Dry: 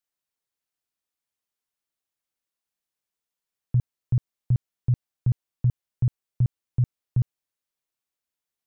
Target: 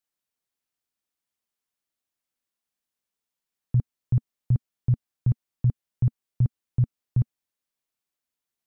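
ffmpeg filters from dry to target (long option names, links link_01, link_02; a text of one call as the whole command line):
ffmpeg -i in.wav -af "equalizer=frequency=230:width_type=o:width=0.51:gain=4" out.wav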